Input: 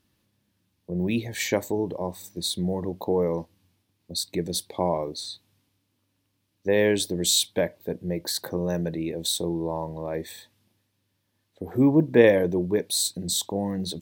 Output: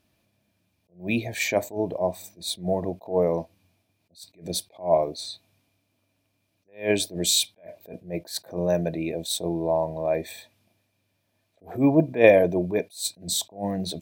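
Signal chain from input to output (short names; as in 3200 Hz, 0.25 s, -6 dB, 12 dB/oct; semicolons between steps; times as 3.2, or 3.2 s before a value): small resonant body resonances 660/2400 Hz, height 15 dB, ringing for 40 ms; attack slew limiter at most 200 dB/s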